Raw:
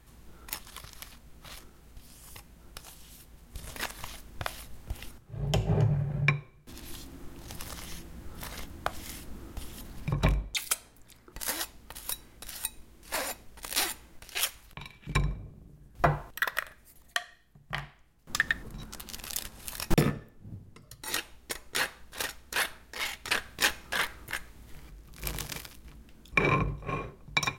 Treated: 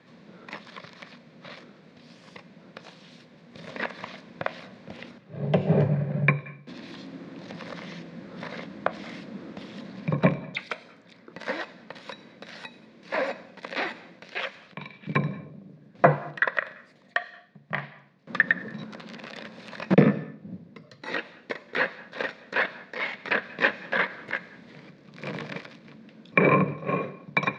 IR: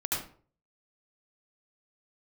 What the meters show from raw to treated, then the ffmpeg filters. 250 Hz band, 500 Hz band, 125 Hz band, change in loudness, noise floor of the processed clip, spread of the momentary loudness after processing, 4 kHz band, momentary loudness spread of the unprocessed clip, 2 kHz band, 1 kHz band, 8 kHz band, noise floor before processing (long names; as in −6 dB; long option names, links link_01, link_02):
+8.0 dB, +9.5 dB, +3.0 dB, +5.0 dB, −55 dBFS, 21 LU, −5.0 dB, 21 LU, +5.0 dB, +5.0 dB, below −20 dB, −57 dBFS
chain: -filter_complex "[0:a]highpass=frequency=170:width=0.5412,highpass=frequency=170:width=1.3066,equalizer=frequency=190:width_type=q:width=4:gain=5,equalizer=frequency=350:width_type=q:width=4:gain=-5,equalizer=frequency=540:width_type=q:width=4:gain=5,equalizer=frequency=820:width_type=q:width=4:gain=-7,equalizer=frequency=1300:width_type=q:width=4:gain=-6,equalizer=frequency=3000:width_type=q:width=4:gain=-7,lowpass=frequency=4100:width=0.5412,lowpass=frequency=4100:width=1.3066,acrossover=split=2600[link_01][link_02];[link_02]acompressor=threshold=-56dB:ratio=4:attack=1:release=60[link_03];[link_01][link_03]amix=inputs=2:normalize=0,asplit=2[link_04][link_05];[1:a]atrim=start_sample=2205,adelay=105[link_06];[link_05][link_06]afir=irnorm=-1:irlink=0,volume=-27dB[link_07];[link_04][link_07]amix=inputs=2:normalize=0,volume=9dB"